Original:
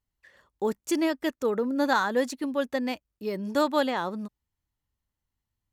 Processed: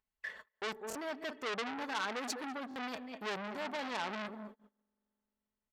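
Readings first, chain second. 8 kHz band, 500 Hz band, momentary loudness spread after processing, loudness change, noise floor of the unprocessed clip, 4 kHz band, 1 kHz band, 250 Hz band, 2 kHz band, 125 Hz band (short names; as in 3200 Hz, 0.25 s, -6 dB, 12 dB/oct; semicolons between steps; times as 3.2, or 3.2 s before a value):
-6.5 dB, -14.5 dB, 8 LU, -12.0 dB, under -85 dBFS, -5.0 dB, -9.5 dB, -15.5 dB, -6.5 dB, -11.5 dB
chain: reverse; compressor 10:1, threshold -37 dBFS, peak gain reduction 18.5 dB; reverse; tone controls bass -1 dB, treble -9 dB; on a send: tape echo 0.198 s, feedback 23%, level -13 dB, low-pass 4300 Hz; on the sum: limiter -36 dBFS, peak gain reduction 9 dB; spring tank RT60 2.8 s, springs 43 ms, chirp 35 ms, DRR 19.5 dB; upward compressor, threshold -51 dBFS; gate -56 dBFS, range -34 dB; low shelf 330 Hz -9 dB; comb 4.6 ms, depth 54%; stuck buffer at 0.88/2.69, samples 1024, times 2; core saturation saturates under 3300 Hz; gain +12.5 dB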